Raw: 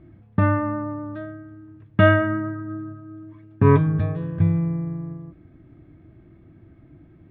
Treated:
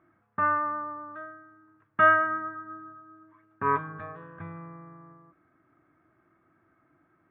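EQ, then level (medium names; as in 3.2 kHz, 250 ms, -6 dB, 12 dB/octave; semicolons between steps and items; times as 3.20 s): band-pass filter 1.3 kHz, Q 2.9; distance through air 170 m; +5.0 dB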